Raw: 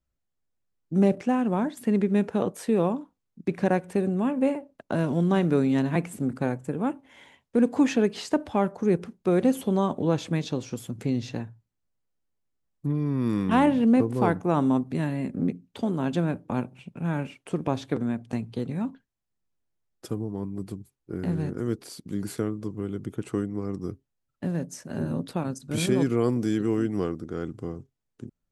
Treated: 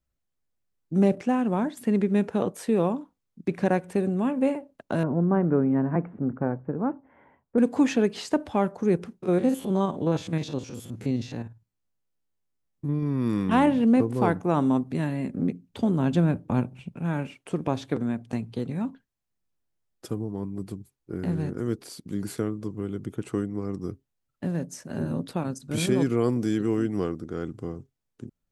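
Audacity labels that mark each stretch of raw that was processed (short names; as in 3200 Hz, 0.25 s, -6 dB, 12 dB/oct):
5.030000	7.580000	LPF 1500 Hz 24 dB/oct
9.180000	13.030000	stepped spectrum every 50 ms
15.690000	16.950000	low shelf 160 Hz +10.5 dB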